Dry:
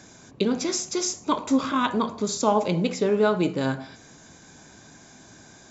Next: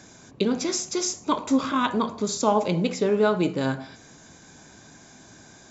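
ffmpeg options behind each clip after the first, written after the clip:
ffmpeg -i in.wav -af anull out.wav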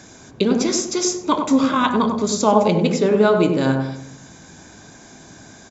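ffmpeg -i in.wav -filter_complex "[0:a]asplit=2[link_01][link_02];[link_02]adelay=97,lowpass=frequency=860:poles=1,volume=-3dB,asplit=2[link_03][link_04];[link_04]adelay=97,lowpass=frequency=860:poles=1,volume=0.48,asplit=2[link_05][link_06];[link_06]adelay=97,lowpass=frequency=860:poles=1,volume=0.48,asplit=2[link_07][link_08];[link_08]adelay=97,lowpass=frequency=860:poles=1,volume=0.48,asplit=2[link_09][link_10];[link_10]adelay=97,lowpass=frequency=860:poles=1,volume=0.48,asplit=2[link_11][link_12];[link_12]adelay=97,lowpass=frequency=860:poles=1,volume=0.48[link_13];[link_01][link_03][link_05][link_07][link_09][link_11][link_13]amix=inputs=7:normalize=0,volume=5dB" out.wav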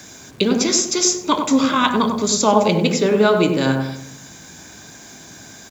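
ffmpeg -i in.wav -filter_complex "[0:a]highpass=41,acrossover=split=340|1700[link_01][link_02][link_03];[link_03]acontrast=49[link_04];[link_01][link_02][link_04]amix=inputs=3:normalize=0,acrusher=bits=9:dc=4:mix=0:aa=0.000001" out.wav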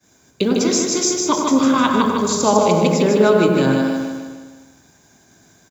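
ffmpeg -i in.wav -filter_complex "[0:a]agate=range=-33dB:threshold=-31dB:ratio=3:detection=peak,equalizer=frequency=3700:width_type=o:width=2.4:gain=-5,asplit=2[link_01][link_02];[link_02]aecho=0:1:153|306|459|612|765|918:0.631|0.315|0.158|0.0789|0.0394|0.0197[link_03];[link_01][link_03]amix=inputs=2:normalize=0" out.wav

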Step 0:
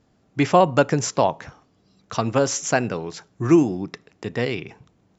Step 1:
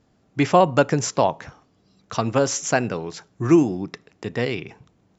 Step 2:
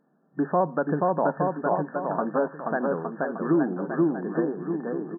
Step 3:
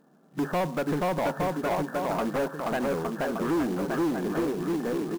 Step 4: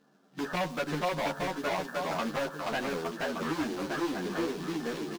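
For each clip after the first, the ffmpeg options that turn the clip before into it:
ffmpeg -i in.wav -af anull out.wav
ffmpeg -i in.wav -af "aecho=1:1:480|864|1171|1417|1614:0.631|0.398|0.251|0.158|0.1,alimiter=limit=-9dB:level=0:latency=1:release=165,afftfilt=real='re*between(b*sr/4096,140,1800)':imag='im*between(b*sr/4096,140,1800)':win_size=4096:overlap=0.75,volume=-3dB" out.wav
ffmpeg -i in.wav -filter_complex "[0:a]asplit=2[link_01][link_02];[link_02]acompressor=threshold=-31dB:ratio=6,volume=-1.5dB[link_03];[link_01][link_03]amix=inputs=2:normalize=0,asoftclip=type=tanh:threshold=-24.5dB,acrusher=bits=4:mode=log:mix=0:aa=0.000001,volume=1dB" out.wav
ffmpeg -i in.wav -filter_complex "[0:a]acrossover=split=5100[link_01][link_02];[link_01]crystalizer=i=7.5:c=0[link_03];[link_02]aecho=1:1:162:0.501[link_04];[link_03][link_04]amix=inputs=2:normalize=0,asplit=2[link_05][link_06];[link_06]adelay=11,afreqshift=-0.78[link_07];[link_05][link_07]amix=inputs=2:normalize=1,volume=-3.5dB" out.wav

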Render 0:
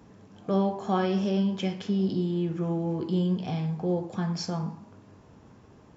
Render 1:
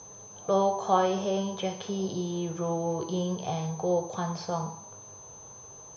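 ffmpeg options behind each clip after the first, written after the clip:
ffmpeg -i in.wav -filter_complex "[0:a]acrossover=split=3300[link_01][link_02];[link_02]acompressor=threshold=-55dB:ratio=4:attack=1:release=60[link_03];[link_01][link_03]amix=inputs=2:normalize=0,aeval=exprs='val(0)+0.00447*sin(2*PI*6200*n/s)':channel_layout=same,equalizer=frequency=125:width_type=o:width=1:gain=4,equalizer=frequency=250:width_type=o:width=1:gain=-11,equalizer=frequency=500:width_type=o:width=1:gain=9,equalizer=frequency=1000:width_type=o:width=1:gain=9,equalizer=frequency=2000:width_type=o:width=1:gain=-4,equalizer=frequency=4000:width_type=o:width=1:gain=11,volume=-3dB" out.wav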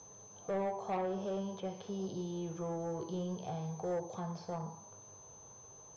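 ffmpeg -i in.wav -filter_complex "[0:a]acrossover=split=1000[link_01][link_02];[link_02]acompressor=threshold=-46dB:ratio=10[link_03];[link_01][link_03]amix=inputs=2:normalize=0,asoftclip=type=tanh:threshold=-22.5dB,volume=-7dB" out.wav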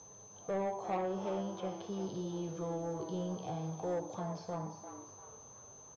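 ffmpeg -i in.wav -filter_complex "[0:a]asplit=5[link_01][link_02][link_03][link_04][link_05];[link_02]adelay=346,afreqshift=140,volume=-10.5dB[link_06];[link_03]adelay=692,afreqshift=280,volume=-19.1dB[link_07];[link_04]adelay=1038,afreqshift=420,volume=-27.8dB[link_08];[link_05]adelay=1384,afreqshift=560,volume=-36.4dB[link_09];[link_01][link_06][link_07][link_08][link_09]amix=inputs=5:normalize=0" out.wav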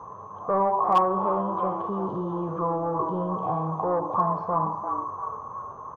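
ffmpeg -i in.wav -filter_complex "[0:a]asplit=2[link_01][link_02];[link_02]alimiter=level_in=13dB:limit=-24dB:level=0:latency=1,volume=-13dB,volume=2.5dB[link_03];[link_01][link_03]amix=inputs=2:normalize=0,lowpass=frequency=1100:width_type=q:width=12,asoftclip=type=hard:threshold=-15.5dB,volume=3.5dB" out.wav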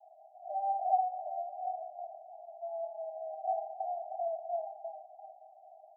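ffmpeg -i in.wav -af "asuperpass=centerf=700:order=12:qfactor=4.1,volume=-1.5dB" out.wav

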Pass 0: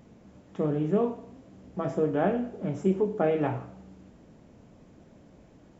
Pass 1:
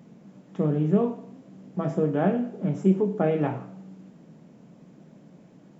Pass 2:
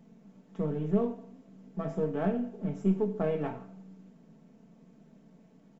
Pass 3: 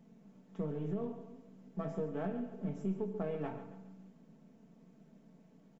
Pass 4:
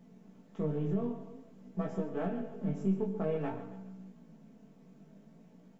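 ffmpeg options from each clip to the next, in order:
ffmpeg -i in.wav -af "lowshelf=frequency=110:width_type=q:width=3:gain=-13" out.wav
ffmpeg -i in.wav -af "aeval=exprs='if(lt(val(0),0),0.708*val(0),val(0))':channel_layout=same,aecho=1:1:4.5:0.51,volume=-7dB" out.wav
ffmpeg -i in.wav -filter_complex "[0:a]alimiter=limit=-23.5dB:level=0:latency=1:release=269,asplit=2[link_01][link_02];[link_02]aecho=0:1:138|276|414|552:0.251|0.105|0.0443|0.0186[link_03];[link_01][link_03]amix=inputs=2:normalize=0,volume=-4dB" out.wav
ffmpeg -i in.wav -af "flanger=delay=16:depth=4.6:speed=0.51,volume=6.5dB" out.wav

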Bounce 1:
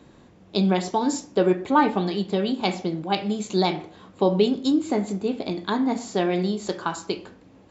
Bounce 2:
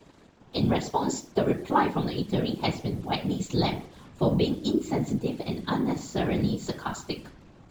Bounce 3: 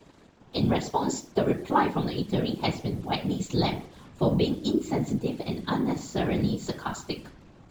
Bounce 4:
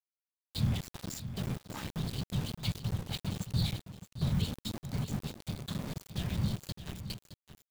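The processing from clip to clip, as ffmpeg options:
ffmpeg -i in.wav -af "asubboost=boost=4:cutoff=160,acrusher=bits=7:mix=0:aa=0.5,afftfilt=real='hypot(re,im)*cos(2*PI*random(0))':imag='hypot(re,im)*sin(2*PI*random(1))':win_size=512:overlap=0.75,volume=2.5dB" out.wav
ffmpeg -i in.wav -af anull out.wav
ffmpeg -i in.wav -af "firequalizer=gain_entry='entry(100,0);entry(330,-26);entry(770,-26);entry(3200,-7)':delay=0.05:min_phase=1,aeval=exprs='val(0)*gte(abs(val(0)),0.0112)':channel_layout=same,aecho=1:1:617:0.266,volume=2dB" out.wav

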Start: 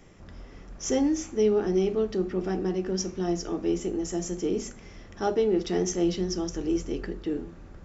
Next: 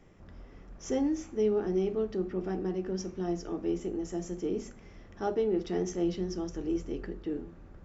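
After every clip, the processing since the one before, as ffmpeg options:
ffmpeg -i in.wav -af "highshelf=frequency=3300:gain=-9,volume=-4.5dB" out.wav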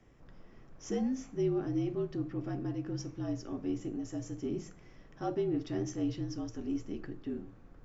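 ffmpeg -i in.wav -af "afreqshift=-54,volume=-3.5dB" out.wav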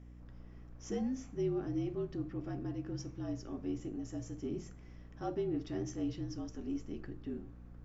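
ffmpeg -i in.wav -af "aeval=exprs='val(0)+0.00398*(sin(2*PI*60*n/s)+sin(2*PI*2*60*n/s)/2+sin(2*PI*3*60*n/s)/3+sin(2*PI*4*60*n/s)/4+sin(2*PI*5*60*n/s)/5)':channel_layout=same,volume=-3.5dB" out.wav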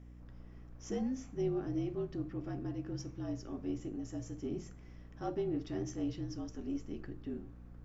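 ffmpeg -i in.wav -af "aeval=exprs='0.0596*(cos(1*acos(clip(val(0)/0.0596,-1,1)))-cos(1*PI/2))+0.00668*(cos(2*acos(clip(val(0)/0.0596,-1,1)))-cos(2*PI/2))':channel_layout=same" out.wav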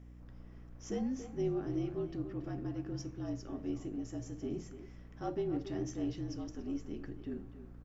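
ffmpeg -i in.wav -filter_complex "[0:a]asplit=2[link_01][link_02];[link_02]adelay=280,highpass=300,lowpass=3400,asoftclip=type=hard:threshold=-31dB,volume=-10dB[link_03];[link_01][link_03]amix=inputs=2:normalize=0" out.wav

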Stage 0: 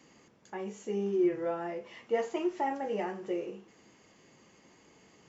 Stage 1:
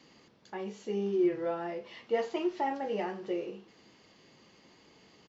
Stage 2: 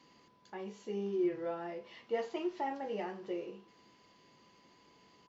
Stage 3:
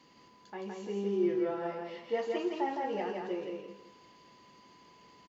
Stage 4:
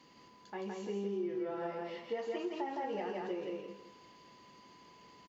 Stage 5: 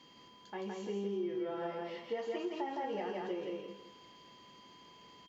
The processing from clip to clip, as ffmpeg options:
ffmpeg -i in.wav -af "firequalizer=gain_entry='entry(2200,0);entry(4200,8);entry(7000,-7)':delay=0.05:min_phase=1" out.wav
ffmpeg -i in.wav -af "aeval=exprs='val(0)+0.000794*sin(2*PI*1000*n/s)':channel_layout=same,volume=-5dB" out.wav
ffmpeg -i in.wav -af "aecho=1:1:165|330|495|660:0.708|0.198|0.0555|0.0155,volume=2dB" out.wav
ffmpeg -i in.wav -af "acompressor=threshold=-34dB:ratio=6" out.wav
ffmpeg -i in.wav -af "aeval=exprs='val(0)+0.000794*sin(2*PI*3200*n/s)':channel_layout=same" out.wav

